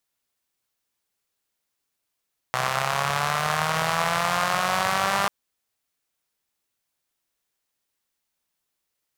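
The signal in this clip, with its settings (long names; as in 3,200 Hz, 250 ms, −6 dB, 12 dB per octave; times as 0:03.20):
pulse-train model of a four-cylinder engine, changing speed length 2.74 s, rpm 3,800, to 6,000, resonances 150/740/1,100 Hz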